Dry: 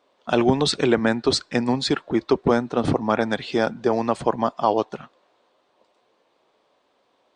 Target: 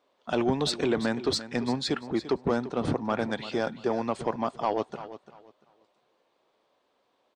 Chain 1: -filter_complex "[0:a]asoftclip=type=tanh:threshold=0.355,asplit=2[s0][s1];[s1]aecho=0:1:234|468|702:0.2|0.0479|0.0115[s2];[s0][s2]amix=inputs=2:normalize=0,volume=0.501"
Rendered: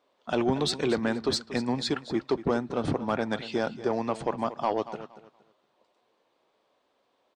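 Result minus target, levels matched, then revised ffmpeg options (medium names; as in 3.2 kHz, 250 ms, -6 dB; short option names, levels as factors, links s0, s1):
echo 109 ms early
-filter_complex "[0:a]asoftclip=type=tanh:threshold=0.355,asplit=2[s0][s1];[s1]aecho=0:1:343|686|1029:0.2|0.0479|0.0115[s2];[s0][s2]amix=inputs=2:normalize=0,volume=0.501"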